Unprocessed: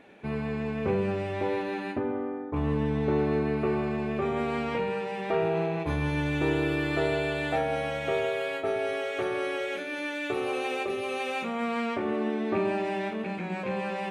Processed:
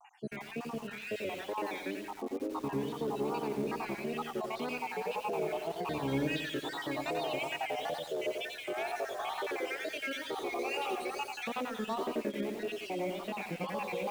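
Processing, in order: random holes in the spectrogram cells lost 70%; overdrive pedal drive 14 dB, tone 4.9 kHz, clips at -15.5 dBFS; high-pass 160 Hz 12 dB/octave; peaking EQ 1.6 kHz -10.5 dB 1.4 oct; peak limiter -28.5 dBFS, peak gain reduction 11 dB; on a send: filtered feedback delay 109 ms, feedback 31%, low-pass 4.7 kHz, level -8.5 dB; on the sum: wow and flutter 140 cents; bit-crushed delay 89 ms, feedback 55%, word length 8-bit, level -5.5 dB

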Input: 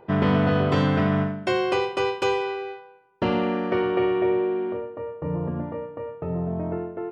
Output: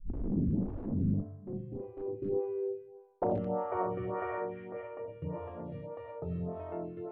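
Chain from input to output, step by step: tape start-up on the opening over 0.81 s; fifteen-band graphic EQ 100 Hz +11 dB, 250 Hz -5 dB, 1.6 kHz -4 dB; algorithmic reverb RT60 0.48 s, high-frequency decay 0.45×, pre-delay 50 ms, DRR 2 dB; integer overflow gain 13.5 dB; low-pass sweep 210 Hz -> 4 kHz, 1.69–5.64 s; dynamic bell 130 Hz, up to -5 dB, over -37 dBFS, Q 5; lamp-driven phase shifter 1.7 Hz; trim -8 dB

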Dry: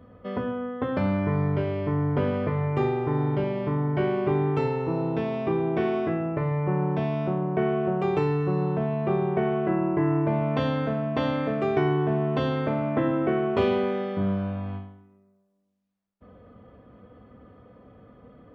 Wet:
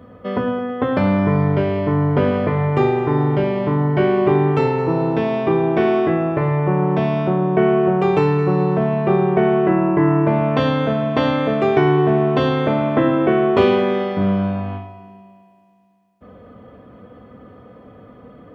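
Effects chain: bass shelf 67 Hz -10 dB; on a send: multi-head delay 108 ms, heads first and second, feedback 65%, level -19 dB; on the sum: trim +9 dB

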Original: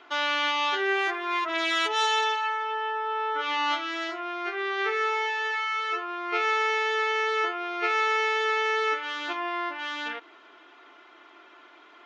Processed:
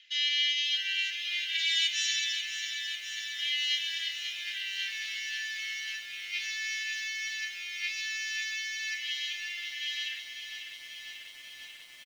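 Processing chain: steep high-pass 1.7 kHz 96 dB/octave; high-order bell 4.4 kHz +8.5 dB; comb 4.4 ms, depth 59%; on a send: feedback echo behind a high-pass 130 ms, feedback 38%, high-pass 4.1 kHz, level -10.5 dB; on the sum: Schroeder reverb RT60 1.8 s, DRR 19.5 dB; bit-crushed delay 542 ms, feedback 80%, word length 8-bit, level -8.5 dB; trim -6.5 dB

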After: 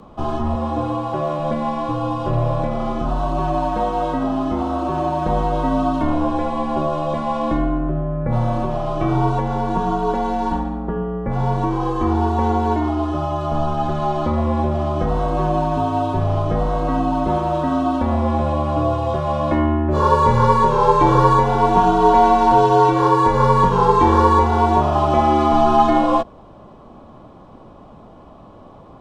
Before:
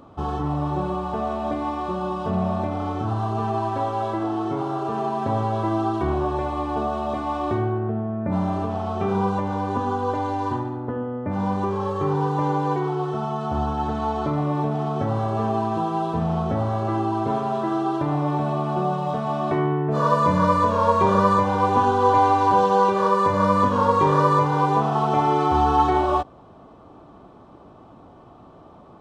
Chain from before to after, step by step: 0.55–1.39 s: high-pass 180 Hz; frequency shift -65 Hz; trim +4.5 dB

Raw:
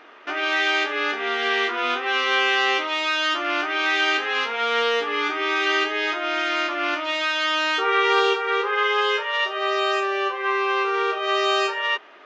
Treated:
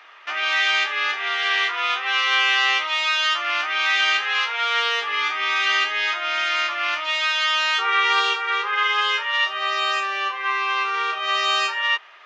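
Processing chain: high-pass 1.1 kHz 12 dB/octave; band-stop 1.5 kHz, Q 12; trim +3.5 dB

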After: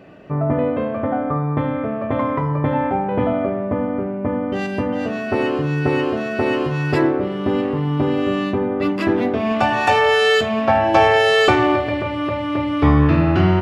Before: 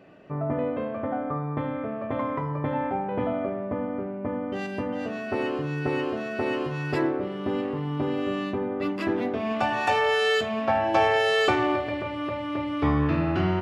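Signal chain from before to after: bass shelf 120 Hz +6 dB; trim +7.5 dB

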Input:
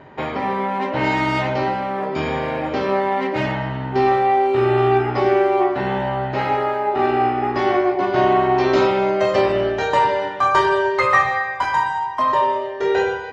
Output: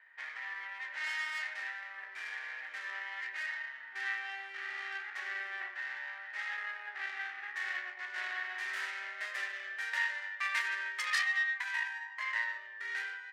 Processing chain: tracing distortion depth 0.47 ms; band-pass filter 1.8 kHz, Q 6.8; differentiator; trim +8 dB

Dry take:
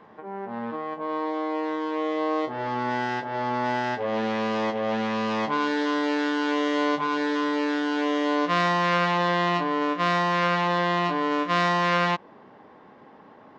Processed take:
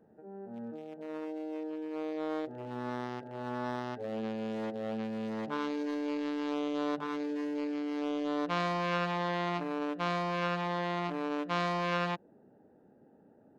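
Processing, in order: local Wiener filter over 41 samples; trim -7 dB

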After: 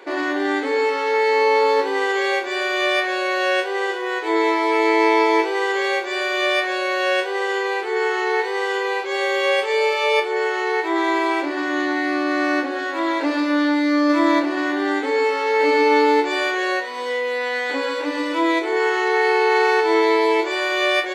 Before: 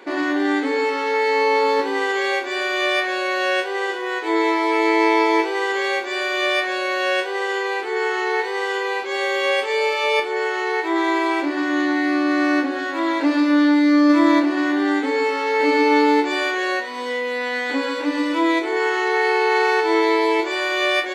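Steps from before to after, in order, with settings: resonant low shelf 300 Hz -7 dB, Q 1.5

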